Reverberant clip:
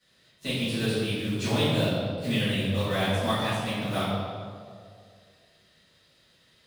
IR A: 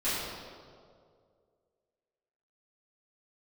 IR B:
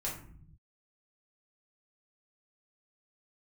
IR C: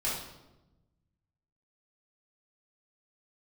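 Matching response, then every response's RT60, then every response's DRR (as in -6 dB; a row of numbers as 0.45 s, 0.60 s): A; 2.2 s, 0.55 s, 1.0 s; -15.5 dB, -5.0 dB, -7.5 dB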